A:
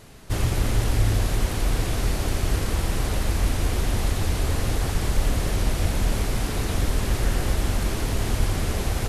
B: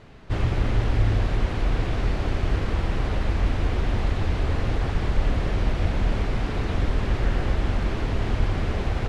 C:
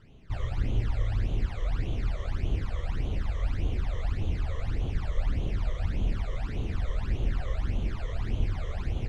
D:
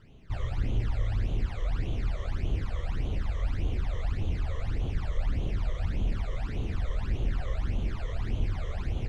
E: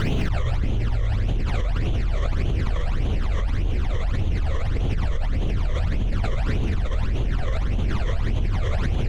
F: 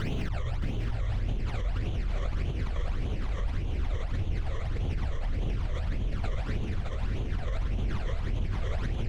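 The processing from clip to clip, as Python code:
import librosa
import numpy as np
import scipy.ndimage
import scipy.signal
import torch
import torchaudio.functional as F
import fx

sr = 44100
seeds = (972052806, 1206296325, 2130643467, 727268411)

y1 = scipy.signal.sosfilt(scipy.signal.butter(2, 3000.0, 'lowpass', fs=sr, output='sos'), x)
y2 = fx.phaser_stages(y1, sr, stages=12, low_hz=250.0, high_hz=1700.0, hz=1.7, feedback_pct=45)
y2 = y2 * 10.0 ** (-7.5 / 20.0)
y3 = 10.0 ** (-16.0 / 20.0) * np.tanh(y2 / 10.0 ** (-16.0 / 20.0))
y4 = y3 + 10.0 ** (-10.0 / 20.0) * np.pad(y3, (int(176 * sr / 1000.0), 0))[:len(y3)]
y4 = fx.env_flatten(y4, sr, amount_pct=100)
y5 = y4 + 10.0 ** (-6.5 / 20.0) * np.pad(y4, (int(621 * sr / 1000.0), 0))[:len(y4)]
y5 = y5 * 10.0 ** (-8.5 / 20.0)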